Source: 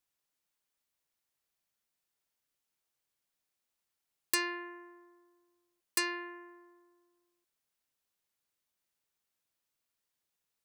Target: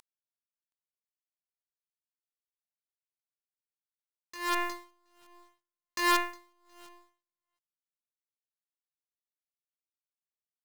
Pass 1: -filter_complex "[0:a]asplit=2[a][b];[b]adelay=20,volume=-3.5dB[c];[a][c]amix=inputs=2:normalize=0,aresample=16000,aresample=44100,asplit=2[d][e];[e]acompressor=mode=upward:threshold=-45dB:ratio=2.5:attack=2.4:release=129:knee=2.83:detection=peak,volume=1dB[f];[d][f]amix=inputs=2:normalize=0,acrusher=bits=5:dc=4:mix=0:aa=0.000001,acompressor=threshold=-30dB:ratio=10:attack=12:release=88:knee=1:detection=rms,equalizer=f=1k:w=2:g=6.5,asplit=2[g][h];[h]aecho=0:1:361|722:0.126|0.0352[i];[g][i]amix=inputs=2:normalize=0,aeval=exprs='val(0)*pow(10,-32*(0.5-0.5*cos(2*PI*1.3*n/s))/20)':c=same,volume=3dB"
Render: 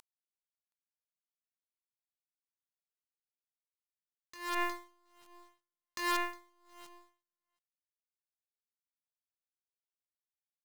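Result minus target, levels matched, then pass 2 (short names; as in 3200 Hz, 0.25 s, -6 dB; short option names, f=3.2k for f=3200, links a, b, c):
compressor: peak gain reduction +7 dB
-filter_complex "[0:a]asplit=2[a][b];[b]adelay=20,volume=-3.5dB[c];[a][c]amix=inputs=2:normalize=0,aresample=16000,aresample=44100,asplit=2[d][e];[e]acompressor=mode=upward:threshold=-45dB:ratio=2.5:attack=2.4:release=129:knee=2.83:detection=peak,volume=1dB[f];[d][f]amix=inputs=2:normalize=0,acrusher=bits=5:dc=4:mix=0:aa=0.000001,acompressor=threshold=-22dB:ratio=10:attack=12:release=88:knee=1:detection=rms,equalizer=f=1k:w=2:g=6.5,asplit=2[g][h];[h]aecho=0:1:361|722:0.126|0.0352[i];[g][i]amix=inputs=2:normalize=0,aeval=exprs='val(0)*pow(10,-32*(0.5-0.5*cos(2*PI*1.3*n/s))/20)':c=same,volume=3dB"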